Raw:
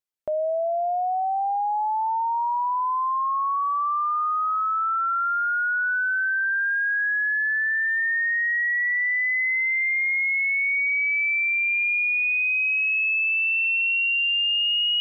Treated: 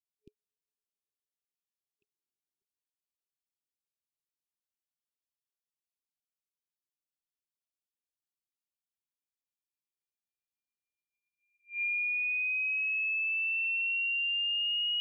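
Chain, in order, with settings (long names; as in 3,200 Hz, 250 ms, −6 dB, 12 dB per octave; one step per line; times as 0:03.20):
0:02.02–0:02.62: dynamic equaliser 410 Hz, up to +8 dB, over −44 dBFS, Q 0.74
brick-wall band-stop 420–2,400 Hz
level −8.5 dB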